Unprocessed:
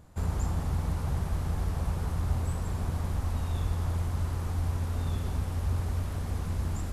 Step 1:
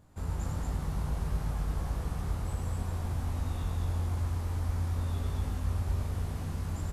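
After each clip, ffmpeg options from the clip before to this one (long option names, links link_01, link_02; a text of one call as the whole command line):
ffmpeg -i in.wav -filter_complex "[0:a]asplit=2[link_01][link_02];[link_02]adelay=20,volume=-5.5dB[link_03];[link_01][link_03]amix=inputs=2:normalize=0,asplit=2[link_04][link_05];[link_05]aecho=0:1:96.21|233.2:0.631|0.794[link_06];[link_04][link_06]amix=inputs=2:normalize=0,volume=-6.5dB" out.wav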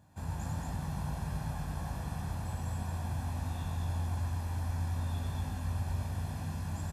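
ffmpeg -i in.wav -af "highpass=98,aecho=1:1:1.2:0.55,volume=-1.5dB" out.wav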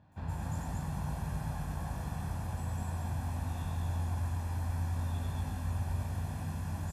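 ffmpeg -i in.wav -filter_complex "[0:a]acrossover=split=4300[link_01][link_02];[link_02]adelay=120[link_03];[link_01][link_03]amix=inputs=2:normalize=0" out.wav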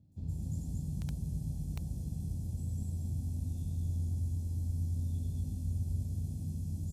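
ffmpeg -i in.wav -filter_complex "[0:a]highshelf=frequency=7500:gain=-5.5,acrossover=split=400|4600[link_01][link_02][link_03];[link_02]acrusher=bits=5:mix=0:aa=0.000001[link_04];[link_01][link_04][link_03]amix=inputs=3:normalize=0" out.wav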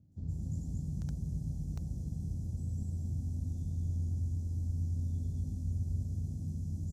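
ffmpeg -i in.wav -af "firequalizer=gain_entry='entry(390,0);entry(1000,-5);entry(1500,-1);entry(2300,-13);entry(6100,0);entry(9600,-10)':delay=0.05:min_phase=1" out.wav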